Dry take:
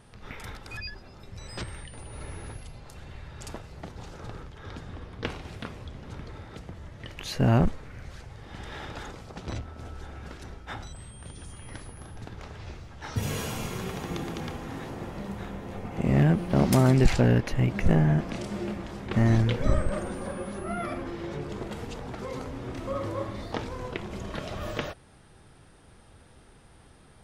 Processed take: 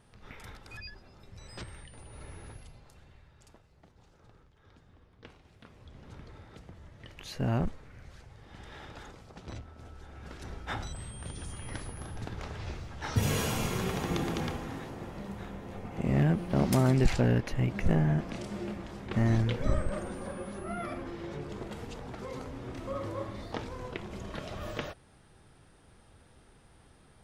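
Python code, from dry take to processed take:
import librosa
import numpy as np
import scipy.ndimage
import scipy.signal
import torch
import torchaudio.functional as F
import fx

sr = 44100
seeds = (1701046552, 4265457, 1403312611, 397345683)

y = fx.gain(x, sr, db=fx.line((2.64, -7.0), (3.52, -19.0), (5.54, -19.0), (6.0, -8.0), (10.06, -8.0), (10.61, 2.0), (14.41, 2.0), (14.9, -4.5)))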